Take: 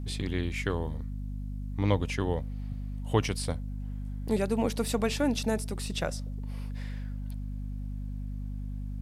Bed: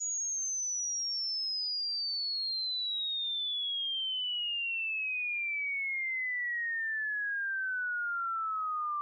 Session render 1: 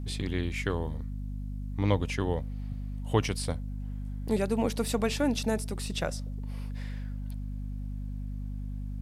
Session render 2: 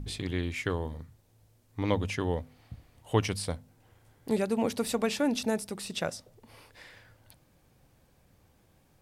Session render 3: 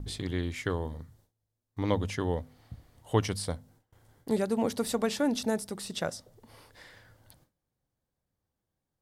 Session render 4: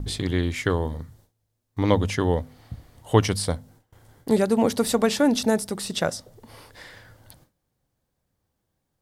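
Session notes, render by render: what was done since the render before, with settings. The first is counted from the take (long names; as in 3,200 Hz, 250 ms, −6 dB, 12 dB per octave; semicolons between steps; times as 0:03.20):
no processing that can be heard
hum removal 50 Hz, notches 5
noise gate with hold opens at −51 dBFS; parametric band 2,500 Hz −7.5 dB 0.34 octaves
level +8 dB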